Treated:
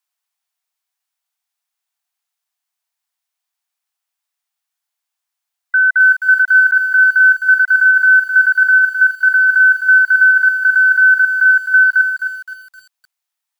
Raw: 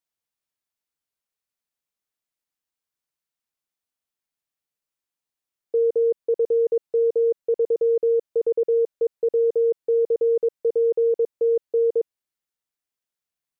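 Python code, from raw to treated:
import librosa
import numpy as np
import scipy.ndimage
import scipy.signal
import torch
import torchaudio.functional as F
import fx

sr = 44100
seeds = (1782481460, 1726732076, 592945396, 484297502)

y = fx.band_invert(x, sr, width_hz=2000)
y = scipy.signal.sosfilt(scipy.signal.butter(16, 650.0, 'highpass', fs=sr, output='sos'), y)
y = fx.echo_crushed(y, sr, ms=260, feedback_pct=35, bits=8, wet_db=-8.0)
y = y * librosa.db_to_amplitude(8.0)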